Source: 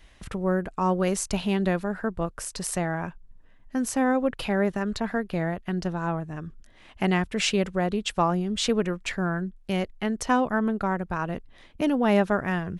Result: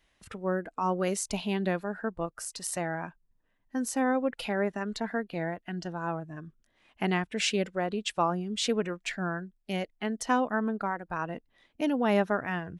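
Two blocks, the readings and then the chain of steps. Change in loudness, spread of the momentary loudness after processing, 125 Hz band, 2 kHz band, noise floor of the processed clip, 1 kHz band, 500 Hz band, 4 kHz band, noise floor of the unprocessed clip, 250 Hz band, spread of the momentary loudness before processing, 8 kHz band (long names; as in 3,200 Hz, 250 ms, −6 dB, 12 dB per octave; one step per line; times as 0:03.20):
−4.5 dB, 10 LU, −7.0 dB, −3.0 dB, −72 dBFS, −3.0 dB, −4.0 dB, −3.0 dB, −53 dBFS, −5.5 dB, 8 LU, −3.0 dB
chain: noise reduction from a noise print of the clip's start 9 dB
low-shelf EQ 100 Hz −10.5 dB
level −3 dB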